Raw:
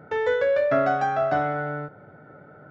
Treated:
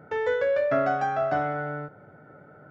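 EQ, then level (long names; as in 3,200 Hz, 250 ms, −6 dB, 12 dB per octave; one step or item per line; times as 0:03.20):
parametric band 3,800 Hz −4 dB 0.22 octaves
−2.5 dB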